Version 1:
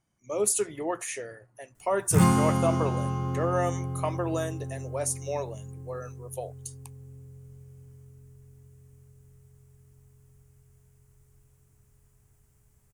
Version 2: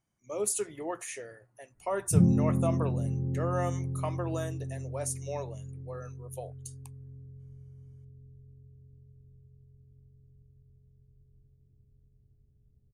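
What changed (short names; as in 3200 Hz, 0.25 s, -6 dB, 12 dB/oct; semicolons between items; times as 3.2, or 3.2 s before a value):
speech -5.0 dB; background: add Gaussian blur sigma 20 samples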